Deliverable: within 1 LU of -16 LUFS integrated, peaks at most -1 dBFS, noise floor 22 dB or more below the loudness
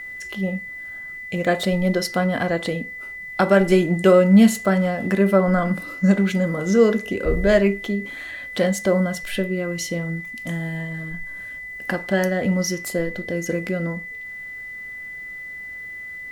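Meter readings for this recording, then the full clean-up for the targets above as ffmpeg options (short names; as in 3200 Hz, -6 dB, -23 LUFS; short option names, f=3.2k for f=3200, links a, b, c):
steady tone 2000 Hz; tone level -32 dBFS; loudness -21.0 LUFS; peak -4.5 dBFS; loudness target -16.0 LUFS
-> -af "bandreject=f=2k:w=30"
-af "volume=5dB,alimiter=limit=-1dB:level=0:latency=1"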